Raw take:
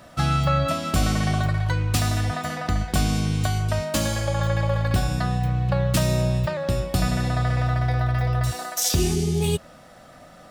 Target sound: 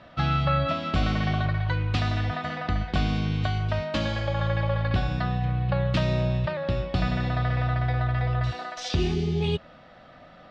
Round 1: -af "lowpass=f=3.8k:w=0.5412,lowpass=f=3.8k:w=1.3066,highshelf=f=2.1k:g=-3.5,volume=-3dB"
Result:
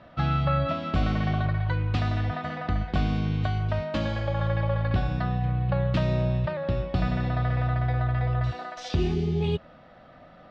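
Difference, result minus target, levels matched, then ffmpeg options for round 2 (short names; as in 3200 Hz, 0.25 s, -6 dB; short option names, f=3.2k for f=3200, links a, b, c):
4000 Hz band -5.0 dB
-af "lowpass=f=3.8k:w=0.5412,lowpass=f=3.8k:w=1.3066,highshelf=f=2.1k:g=4,volume=-3dB"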